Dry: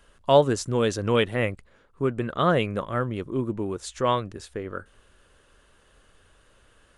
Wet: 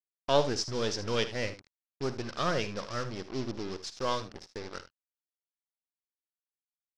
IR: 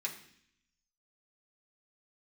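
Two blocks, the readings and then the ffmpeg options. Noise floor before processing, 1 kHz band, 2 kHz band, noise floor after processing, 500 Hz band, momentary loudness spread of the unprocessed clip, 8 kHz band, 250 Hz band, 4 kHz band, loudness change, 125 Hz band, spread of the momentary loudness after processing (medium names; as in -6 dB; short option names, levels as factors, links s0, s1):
-60 dBFS, -8.0 dB, -6.0 dB, under -85 dBFS, -8.5 dB, 15 LU, -2.5 dB, -9.5 dB, -1.5 dB, -7.5 dB, -10.0 dB, 15 LU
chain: -af "aeval=exprs='if(lt(val(0),0),0.447*val(0),val(0))':c=same,acrusher=bits=5:mix=0:aa=0.5,lowpass=f=5300:t=q:w=5.3,aecho=1:1:53|77:0.178|0.2,volume=0.501"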